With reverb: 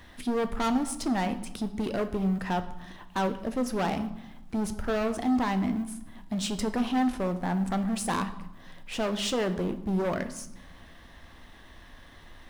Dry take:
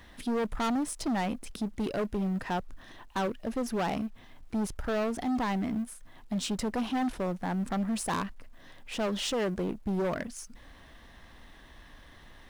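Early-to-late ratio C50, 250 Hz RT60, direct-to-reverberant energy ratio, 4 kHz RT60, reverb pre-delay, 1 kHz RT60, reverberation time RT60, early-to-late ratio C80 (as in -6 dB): 13.0 dB, 1.4 s, 8.5 dB, 0.70 s, 9 ms, 1.0 s, 0.90 s, 15.0 dB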